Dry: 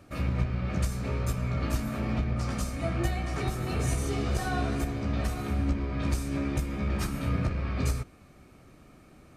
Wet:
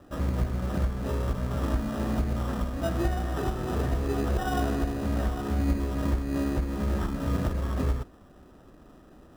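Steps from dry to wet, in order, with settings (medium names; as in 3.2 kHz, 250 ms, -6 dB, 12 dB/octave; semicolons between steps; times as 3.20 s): steep low-pass 1.9 kHz 96 dB/octave; peaking EQ 120 Hz -8.5 dB 1.1 oct; in parallel at -3 dB: sample-and-hold 20×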